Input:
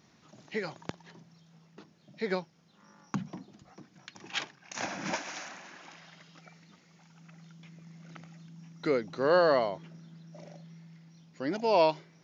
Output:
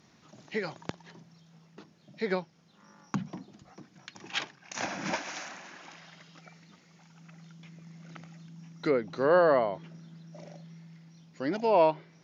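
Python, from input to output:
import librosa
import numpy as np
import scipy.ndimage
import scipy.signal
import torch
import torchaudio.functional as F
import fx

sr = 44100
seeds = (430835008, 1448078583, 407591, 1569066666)

y = fx.env_lowpass_down(x, sr, base_hz=2200.0, full_db=-23.0)
y = F.gain(torch.from_numpy(y), 1.5).numpy()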